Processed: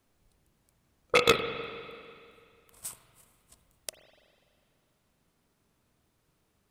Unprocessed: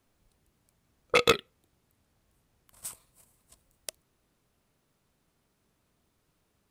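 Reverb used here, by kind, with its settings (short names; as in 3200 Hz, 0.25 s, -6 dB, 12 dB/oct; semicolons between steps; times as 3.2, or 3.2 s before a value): spring tank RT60 2.3 s, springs 41/49 ms, chirp 60 ms, DRR 7.5 dB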